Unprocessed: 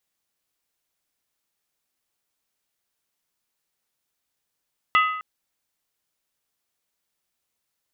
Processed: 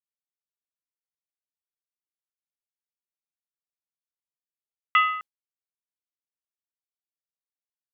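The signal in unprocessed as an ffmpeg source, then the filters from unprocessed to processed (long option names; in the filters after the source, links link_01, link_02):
-f lavfi -i "aevalsrc='0.2*pow(10,-3*t/0.83)*sin(2*PI*1260*t)+0.119*pow(10,-3*t/0.657)*sin(2*PI*2008.4*t)+0.0708*pow(10,-3*t/0.568)*sin(2*PI*2691.4*t)+0.0422*pow(10,-3*t/0.548)*sin(2*PI*2893*t)+0.0251*pow(10,-3*t/0.51)*sin(2*PI*3342.8*t)':duration=0.26:sample_rate=44100"
-af "agate=range=-33dB:threshold=-31dB:ratio=3:detection=peak"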